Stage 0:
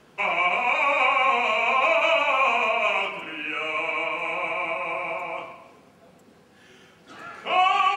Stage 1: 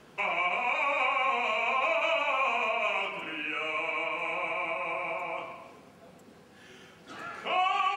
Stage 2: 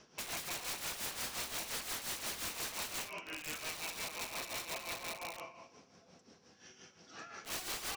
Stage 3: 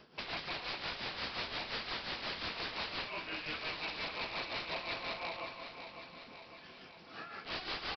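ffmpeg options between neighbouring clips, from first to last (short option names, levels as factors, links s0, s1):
-af "acompressor=threshold=0.0141:ratio=1.5"
-af "lowpass=f=5700:t=q:w=8.1,aeval=exprs='(mod(22.4*val(0)+1,2)-1)/22.4':c=same,tremolo=f=5.7:d=0.65,volume=0.473"
-af "aecho=1:1:553|1106|1659|2212|2765|3318|3871:0.335|0.201|0.121|0.0724|0.0434|0.026|0.0156,aresample=11025,aresample=44100,volume=1.41"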